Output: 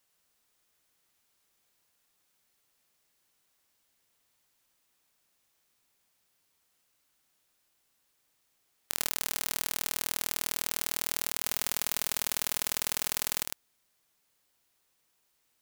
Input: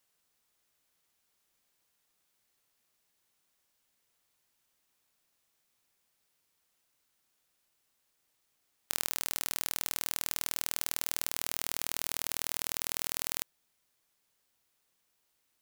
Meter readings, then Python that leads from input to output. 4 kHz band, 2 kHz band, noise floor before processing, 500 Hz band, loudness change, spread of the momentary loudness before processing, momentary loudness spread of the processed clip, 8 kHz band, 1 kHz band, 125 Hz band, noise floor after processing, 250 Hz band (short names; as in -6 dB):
+3.0 dB, +3.0 dB, -77 dBFS, +3.5 dB, +3.0 dB, 1 LU, 2 LU, +3.0 dB, +2.5 dB, +0.5 dB, -74 dBFS, +3.0 dB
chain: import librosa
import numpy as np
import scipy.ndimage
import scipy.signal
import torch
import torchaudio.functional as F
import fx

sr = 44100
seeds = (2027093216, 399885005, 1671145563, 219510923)

y = x + 10.0 ** (-4.5 / 20.0) * np.pad(x, (int(105 * sr / 1000.0), 0))[:len(x)]
y = y * librosa.db_to_amplitude(1.5)